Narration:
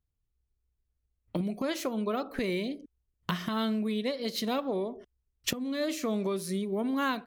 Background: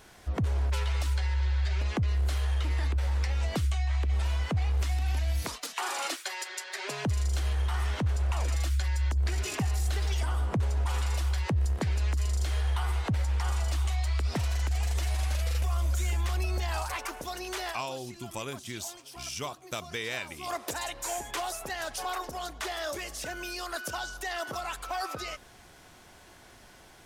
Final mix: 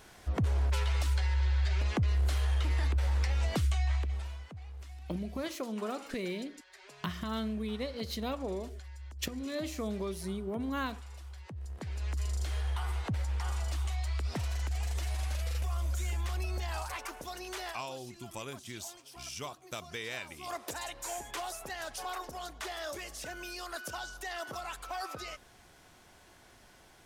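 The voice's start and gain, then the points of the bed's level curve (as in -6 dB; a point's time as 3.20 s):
3.75 s, -5.5 dB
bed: 3.91 s -1 dB
4.51 s -18 dB
11.46 s -18 dB
12.19 s -5 dB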